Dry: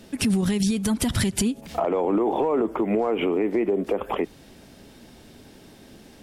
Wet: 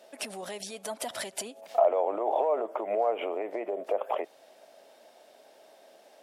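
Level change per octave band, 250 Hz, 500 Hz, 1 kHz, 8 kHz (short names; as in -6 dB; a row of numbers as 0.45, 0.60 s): -21.0, -4.0, -1.0, -9.0 dB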